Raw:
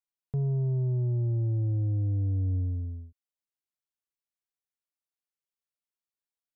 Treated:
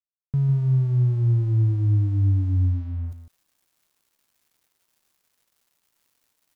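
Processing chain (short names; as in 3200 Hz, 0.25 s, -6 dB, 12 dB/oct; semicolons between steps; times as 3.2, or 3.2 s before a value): band shelf 570 Hz -12.5 dB 1.3 oct; reverse; upward compressor, threshold -33 dBFS; reverse; crossover distortion -55.5 dBFS; echo 0.152 s -9.5 dB; gain +7 dB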